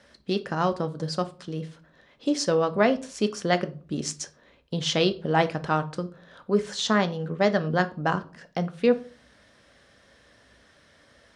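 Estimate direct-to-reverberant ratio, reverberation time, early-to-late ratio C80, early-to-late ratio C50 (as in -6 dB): 9.0 dB, 0.40 s, 23.5 dB, 18.0 dB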